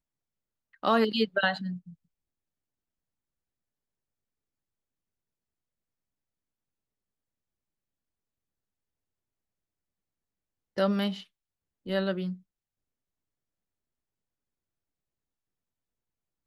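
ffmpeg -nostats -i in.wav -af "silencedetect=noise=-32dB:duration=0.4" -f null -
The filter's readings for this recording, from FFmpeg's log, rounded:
silence_start: 0.00
silence_end: 0.84 | silence_duration: 0.84
silence_start: 1.74
silence_end: 10.78 | silence_duration: 9.04
silence_start: 11.14
silence_end: 11.88 | silence_duration: 0.74
silence_start: 12.32
silence_end: 16.47 | silence_duration: 4.14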